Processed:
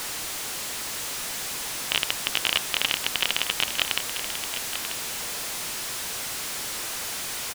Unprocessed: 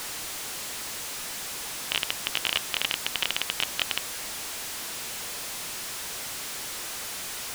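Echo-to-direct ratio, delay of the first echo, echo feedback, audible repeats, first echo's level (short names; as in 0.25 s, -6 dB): -10.0 dB, 0.938 s, no steady repeat, 1, -10.0 dB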